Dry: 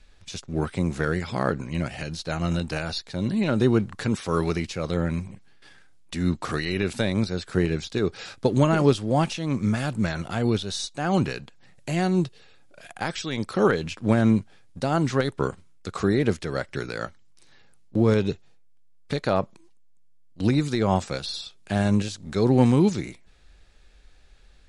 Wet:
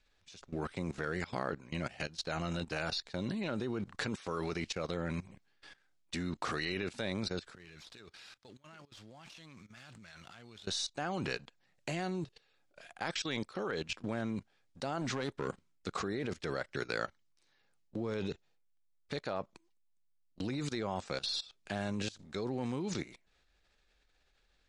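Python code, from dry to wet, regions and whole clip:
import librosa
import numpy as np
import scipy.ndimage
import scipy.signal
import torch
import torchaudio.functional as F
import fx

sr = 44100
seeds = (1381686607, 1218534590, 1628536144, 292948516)

y = fx.chain(x, sr, fx.tone_stack(knobs='5-5-5'),
    fx.over_compress(threshold_db=-45.0, ratio=-1.0),
    fx.running_max(window=3), at=(7.55, 10.67))
y = fx.chain(y, sr, fx.peak_eq(hz=210.0, db=4.5, octaves=1.2),
    fx.clip_hard(threshold_db=-17.0), at=(15.01, 16.04))
y = scipy.signal.sosfilt(scipy.signal.butter(2, 7500.0, 'lowpass', fs=sr, output='sos'), y)
y = fx.low_shelf(y, sr, hz=240.0, db=-9.5)
y = fx.level_steps(y, sr, step_db=18)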